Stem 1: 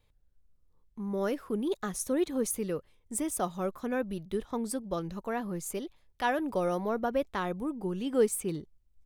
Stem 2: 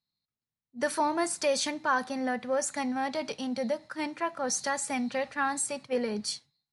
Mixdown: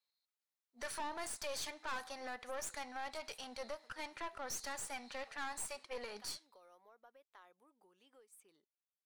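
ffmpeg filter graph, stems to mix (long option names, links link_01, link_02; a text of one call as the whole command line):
ffmpeg -i stem1.wav -i stem2.wav -filter_complex "[0:a]acompressor=threshold=-34dB:ratio=16,volume=-15dB[link_01];[1:a]volume=2.5dB[link_02];[link_01][link_02]amix=inputs=2:normalize=0,highpass=720,aeval=exprs='(tanh(28.2*val(0)+0.75)-tanh(0.75))/28.2':channel_layout=same,alimiter=level_in=9.5dB:limit=-24dB:level=0:latency=1:release=231,volume=-9.5dB" out.wav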